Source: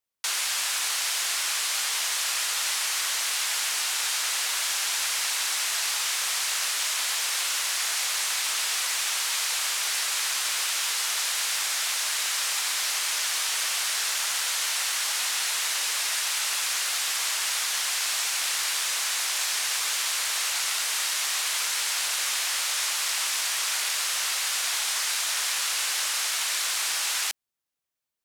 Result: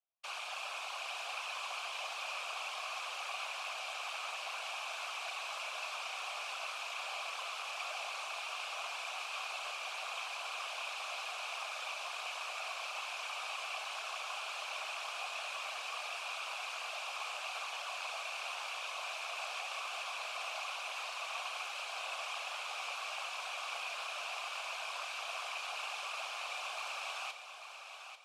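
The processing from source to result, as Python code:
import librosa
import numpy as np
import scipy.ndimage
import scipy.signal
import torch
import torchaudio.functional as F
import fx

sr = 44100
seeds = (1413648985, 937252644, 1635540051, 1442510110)

p1 = fx.vowel_filter(x, sr, vowel='a')
p2 = fx.doubler(p1, sr, ms=34.0, db=-11.5)
p3 = fx.whisperise(p2, sr, seeds[0])
p4 = scipy.signal.sosfilt(scipy.signal.butter(2, 390.0, 'highpass', fs=sr, output='sos'), p3)
p5 = p4 + fx.echo_feedback(p4, sr, ms=842, feedback_pct=31, wet_db=-8.5, dry=0)
y = p5 * 10.0 ** (3.0 / 20.0)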